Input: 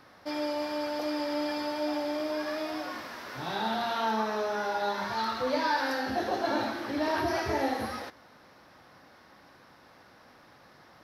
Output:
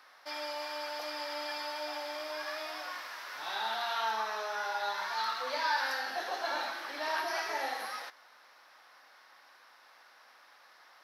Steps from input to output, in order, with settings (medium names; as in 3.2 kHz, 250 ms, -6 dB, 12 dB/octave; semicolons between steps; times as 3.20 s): high-pass 930 Hz 12 dB/octave